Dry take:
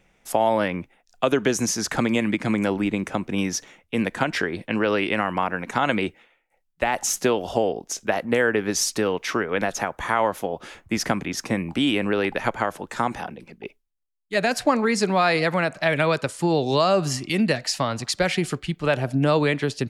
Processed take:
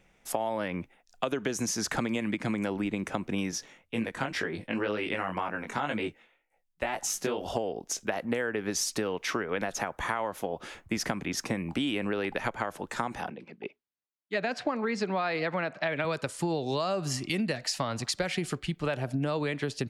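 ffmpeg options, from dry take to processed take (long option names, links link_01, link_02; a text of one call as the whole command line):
ffmpeg -i in.wav -filter_complex "[0:a]asettb=1/sr,asplit=3[link_01][link_02][link_03];[link_01]atrim=end=3.514[link_04];[link_02]atrim=start=3.51:end=7.46,asetpts=PTS-STARTPTS,afade=type=in:duration=0.004:curve=qsin,afade=type=out:start_time=3.946:duration=0.004:curve=qsin,flanger=delay=18:depth=3.8:speed=2[link_05];[link_03]atrim=start=7.456[link_06];[link_04][link_05]acrossfade=duration=0.004:curve1=hsin:curve2=qsin[link_07];[link_07][link_06]acrossfade=duration=0.004:curve1=qsin:curve2=hsin,asettb=1/sr,asplit=3[link_08][link_09][link_10];[link_08]atrim=end=13.304[link_11];[link_09]atrim=start=13.3:end=16.05,asetpts=PTS-STARTPTS,afade=type=in:duration=0.004:curve=qsin,afade=type=out:start_time=2.746:duration=0.004:curve=qsin,highpass=160,lowpass=3900[link_12];[link_10]atrim=start=16.046[link_13];[link_11][link_12]acrossfade=duration=0.004:curve1=hsin:curve2=qsin[link_14];[link_14][link_13]acrossfade=duration=0.004:curve1=qsin:curve2=hsin,acompressor=threshold=-24dB:ratio=6,volume=-2.5dB" out.wav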